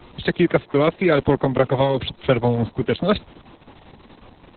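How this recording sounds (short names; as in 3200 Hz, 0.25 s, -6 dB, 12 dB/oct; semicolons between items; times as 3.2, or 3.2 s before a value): a quantiser's noise floor 10-bit, dither none; Opus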